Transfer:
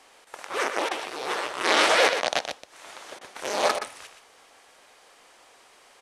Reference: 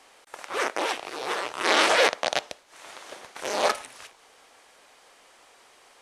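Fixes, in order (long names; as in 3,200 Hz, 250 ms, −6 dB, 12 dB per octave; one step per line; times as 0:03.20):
repair the gap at 0:00.89/0:03.19/0:03.79, 20 ms
echo removal 122 ms −8 dB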